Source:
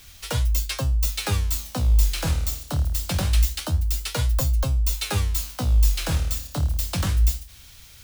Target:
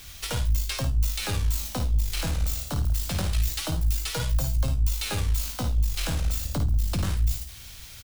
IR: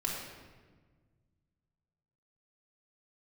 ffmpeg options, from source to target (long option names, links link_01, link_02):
-filter_complex "[0:a]asettb=1/sr,asplit=3[link_01][link_02][link_03];[link_01]atrim=end=3.324[link_04];[link_02]atrim=start=3.32:end=4.57,asetpts=PTS-STARTPTS,afade=type=in:duration=0.004:curve=qsin,afade=type=out:start_time=1.246:duration=0.004:curve=qsin,aecho=1:1:6.2:0.69,atrim=end_sample=55125[link_05];[link_03]atrim=start=4.566[link_06];[link_04][link_05]acrossfade=duration=0.004:curve1=hsin:curve2=qsin[link_07];[link_07][link_06]acrossfade=duration=0.004:curve1=qsin:curve2=hsin,asettb=1/sr,asplit=3[link_08][link_09][link_10];[link_08]atrim=end=6.454[link_11];[link_09]atrim=start=6.45:end=7.04,asetpts=PTS-STARTPTS,afade=type=in:duration=0.004:curve=qsin,afade=type=out:start_time=0.586:duration=0.004:curve=qsin,lowshelf=frequency=340:gain=11[link_12];[link_10]atrim=start=7.036[link_13];[link_11][link_12]acrossfade=duration=0.004:curve1=hsin:curve2=qsin[link_14];[link_14][link_13]acrossfade=duration=0.004:curve1=qsin:curve2=hsin,alimiter=limit=-22.5dB:level=0:latency=1:release=68,aeval=exprs='(tanh(14.1*val(0)+0.5)-tanh(0.5))/14.1':channel_layout=same,aecho=1:1:54|72:0.376|0.211,volume=5dB"